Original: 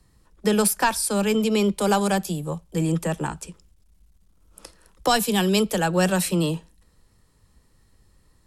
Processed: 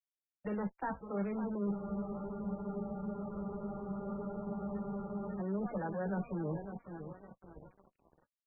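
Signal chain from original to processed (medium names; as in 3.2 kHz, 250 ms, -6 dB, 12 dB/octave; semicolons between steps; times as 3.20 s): drifting ripple filter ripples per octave 1.2, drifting -0.75 Hz, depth 7 dB; gate -57 dBFS, range -21 dB; low-pass that closes with the level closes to 1.2 kHz, closed at -20 dBFS; reverse; compression 16:1, threshold -31 dBFS, peak gain reduction 17 dB; reverse; two-band feedback delay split 2.7 kHz, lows 557 ms, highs 170 ms, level -10 dB; crossover distortion -48 dBFS; valve stage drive 33 dB, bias 0.25; doubling 15 ms -10.5 dB; spectral freeze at 1.75 s, 3.64 s; trim +2.5 dB; MP3 8 kbps 22.05 kHz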